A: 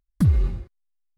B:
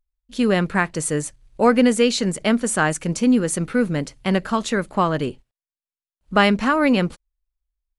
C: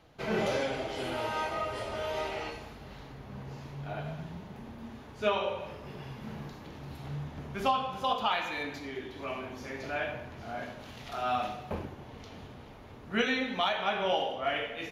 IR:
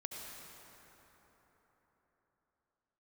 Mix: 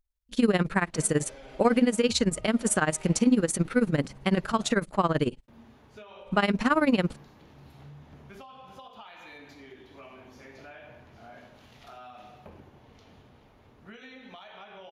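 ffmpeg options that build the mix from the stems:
-filter_complex "[0:a]adelay=1850,volume=-6.5dB[a];[1:a]tremolo=f=18:d=0.89,volume=1.5dB,asplit=2[b][c];[2:a]acompressor=threshold=-33dB:ratio=6,adelay=750,volume=-8dB,asplit=3[d][e][f];[d]atrim=end=4.73,asetpts=PTS-STARTPTS,afade=t=out:st=4.726:d=0.004:c=hsin[g];[e]atrim=start=4.73:end=5.48,asetpts=PTS-STARTPTS,volume=0[h];[f]atrim=start=5.48,asetpts=PTS-STARTPTS,afade=t=in:d=0.004:c=hsin[i];[g][h][i]concat=n=3:v=0:a=1[j];[c]apad=whole_len=133216[k];[a][k]sidechaincompress=threshold=-26dB:ratio=8:attack=16:release=194[l];[l][j]amix=inputs=2:normalize=0,acompressor=threshold=-43dB:ratio=6,volume=0dB[m];[b][m]amix=inputs=2:normalize=0,alimiter=limit=-11.5dB:level=0:latency=1:release=169"

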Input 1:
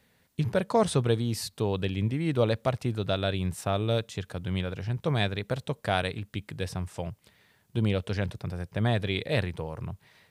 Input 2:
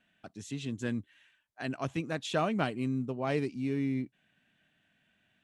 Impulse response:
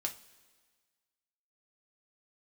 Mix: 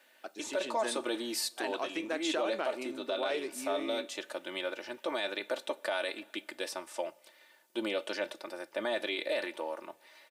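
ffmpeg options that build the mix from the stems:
-filter_complex "[0:a]aecho=1:1:3.4:0.77,volume=-2.5dB,asplit=2[a][b];[b]volume=-8.5dB[c];[1:a]acompressor=threshold=-34dB:ratio=3,volume=2.5dB,asplit=3[d][e][f];[e]volume=-7.5dB[g];[f]apad=whole_len=454545[h];[a][h]sidechaincompress=threshold=-38dB:ratio=8:attack=16:release=231[i];[2:a]atrim=start_sample=2205[j];[c][g]amix=inputs=2:normalize=0[k];[k][j]afir=irnorm=-1:irlink=0[l];[i][d][l]amix=inputs=3:normalize=0,highpass=f=360:w=0.5412,highpass=f=360:w=1.3066,alimiter=limit=-23dB:level=0:latency=1:release=29"

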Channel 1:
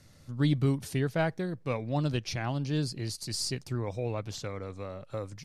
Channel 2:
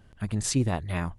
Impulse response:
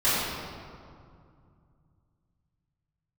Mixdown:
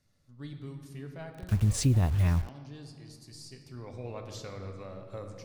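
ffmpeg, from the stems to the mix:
-filter_complex "[0:a]volume=-6dB,afade=t=in:st=3.53:d=0.74:silence=0.281838,asplit=2[a][b];[b]volume=-19.5dB[c];[1:a]lowshelf=f=120:g=8.5,acrusher=bits=6:mix=0:aa=0.000001,equalizer=f=68:w=0.65:g=10,adelay=1300,volume=-2dB[d];[2:a]atrim=start_sample=2205[e];[c][e]afir=irnorm=-1:irlink=0[f];[a][d][f]amix=inputs=3:normalize=0,acompressor=threshold=-24dB:ratio=2"

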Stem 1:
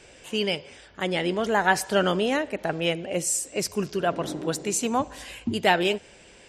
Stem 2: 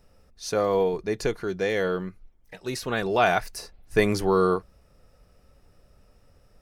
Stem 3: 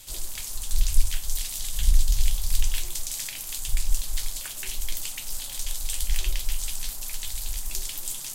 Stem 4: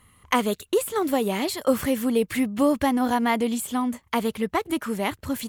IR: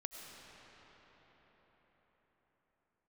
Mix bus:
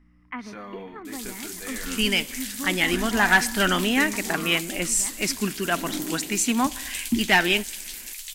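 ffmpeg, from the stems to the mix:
-filter_complex "[0:a]asoftclip=type=hard:threshold=-14dB,adelay=1650,volume=2.5dB[a];[1:a]highshelf=f=3.8k:g=-7,aeval=exprs='val(0)+0.00794*(sin(2*PI*60*n/s)+sin(2*PI*2*60*n/s)/2+sin(2*PI*3*60*n/s)/3+sin(2*PI*4*60*n/s)/4+sin(2*PI*5*60*n/s)/5)':c=same,flanger=delay=22.5:depth=2.9:speed=0.56,volume=-7.5dB[b];[2:a]tiltshelf=f=1.2k:g=-9,adelay=1050,volume=-12.5dB,asplit=2[c][d];[d]volume=-8dB[e];[3:a]lowpass=f=2.3k:w=0.5412,lowpass=f=2.3k:w=1.3066,volume=-16.5dB,asplit=2[f][g];[g]volume=-5dB[h];[4:a]atrim=start_sample=2205[i];[e][h]amix=inputs=2:normalize=0[j];[j][i]afir=irnorm=-1:irlink=0[k];[a][b][c][f][k]amix=inputs=5:normalize=0,equalizer=f=125:t=o:w=1:g=-11,equalizer=f=250:t=o:w=1:g=8,equalizer=f=500:t=o:w=1:g=-12,equalizer=f=2k:t=o:w=1:g=7"

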